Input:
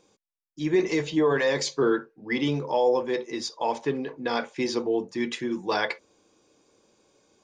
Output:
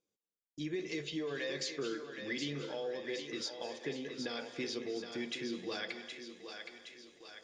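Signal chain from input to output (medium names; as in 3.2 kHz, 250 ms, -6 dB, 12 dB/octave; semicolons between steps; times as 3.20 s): dynamic bell 3.5 kHz, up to +7 dB, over -46 dBFS, Q 0.95; compression 3:1, threshold -35 dBFS, peak gain reduction 13 dB; thinning echo 768 ms, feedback 58%, high-pass 410 Hz, level -6.5 dB; gate with hold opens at -46 dBFS; peaking EQ 930 Hz -14 dB 0.42 oct; reverberation RT60 0.60 s, pre-delay 192 ms, DRR 12.5 dB; trim -4 dB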